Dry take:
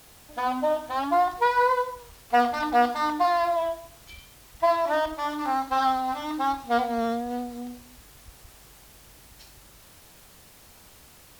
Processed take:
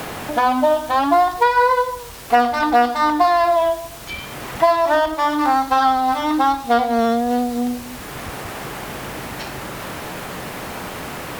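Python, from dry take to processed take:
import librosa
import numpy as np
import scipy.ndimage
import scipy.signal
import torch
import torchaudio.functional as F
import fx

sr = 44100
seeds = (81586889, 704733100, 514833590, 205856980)

y = fx.band_squash(x, sr, depth_pct=70)
y = F.gain(torch.from_numpy(y), 8.5).numpy()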